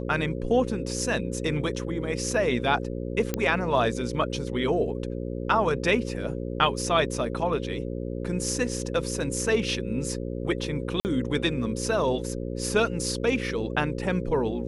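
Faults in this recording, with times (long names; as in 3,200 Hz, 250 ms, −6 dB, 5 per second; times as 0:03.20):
mains buzz 60 Hz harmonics 9 −32 dBFS
0:03.34: click −10 dBFS
0:11.00–0:11.05: drop-out 49 ms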